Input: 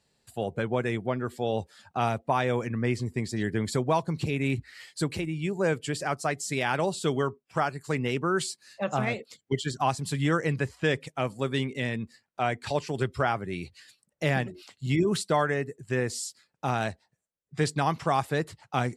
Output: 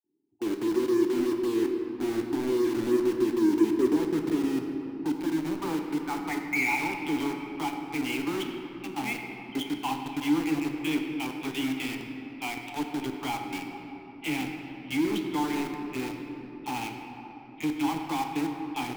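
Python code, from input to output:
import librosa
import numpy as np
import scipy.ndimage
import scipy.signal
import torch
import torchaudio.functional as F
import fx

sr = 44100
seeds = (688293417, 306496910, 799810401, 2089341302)

p1 = fx.vowel_filter(x, sr, vowel='u')
p2 = fx.filter_sweep_lowpass(p1, sr, from_hz=360.0, to_hz=3200.0, start_s=3.66, end_s=7.23, q=7.5)
p3 = scipy.signal.sosfilt(scipy.signal.butter(4, 4300.0, 'lowpass', fs=sr, output='sos'), p2)
p4 = fx.dispersion(p3, sr, late='lows', ms=45.0, hz=940.0)
p5 = fx.quant_companded(p4, sr, bits=2)
p6 = p4 + (p5 * 10.0 ** (-7.5 / 20.0))
y = fx.room_shoebox(p6, sr, seeds[0], volume_m3=210.0, walls='hard', distance_m=0.34)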